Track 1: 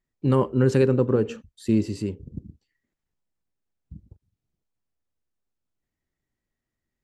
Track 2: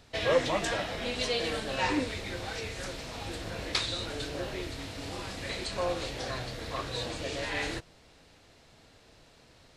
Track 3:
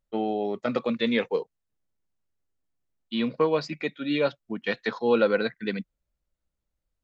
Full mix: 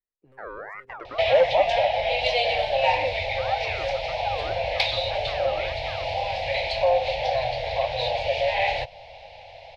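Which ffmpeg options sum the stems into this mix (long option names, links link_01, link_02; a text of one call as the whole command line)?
ffmpeg -i stem1.wav -i stem2.wav -i stem3.wav -filter_complex "[0:a]asoftclip=type=hard:threshold=-15.5dB,acrossover=split=160|3000[link_01][link_02][link_03];[link_02]acompressor=threshold=-36dB:ratio=6[link_04];[link_01][link_04][link_03]amix=inputs=3:normalize=0,alimiter=level_in=2dB:limit=-24dB:level=0:latency=1:release=494,volume=-2dB,volume=-18dB[link_05];[1:a]firequalizer=gain_entry='entry(110,0);entry(240,-23);entry(380,-20);entry(540,12);entry(830,15);entry(1200,-18);entry(2200,9);entry(5100,-3);entry(7700,-23)':delay=0.05:min_phase=1,acontrast=87,adelay=1050,volume=1dB[link_06];[2:a]aeval=exprs='val(0)*sin(2*PI*1200*n/s+1200*0.4/1.8*sin(2*PI*1.8*n/s))':channel_layout=same,adelay=250,volume=-8dB[link_07];[link_05][link_07]amix=inputs=2:normalize=0,equalizer=frequency=125:width_type=o:width=1:gain=-11,equalizer=frequency=250:width_type=o:width=1:gain=-7,equalizer=frequency=500:width_type=o:width=1:gain=10,equalizer=frequency=2000:width_type=o:width=1:gain=6,equalizer=frequency=4000:width_type=o:width=1:gain=-11,equalizer=frequency=8000:width_type=o:width=1:gain=-9,alimiter=level_in=3.5dB:limit=-24dB:level=0:latency=1:release=25,volume=-3.5dB,volume=0dB[link_08];[link_06][link_08]amix=inputs=2:normalize=0,acompressor=threshold=-29dB:ratio=1.5" out.wav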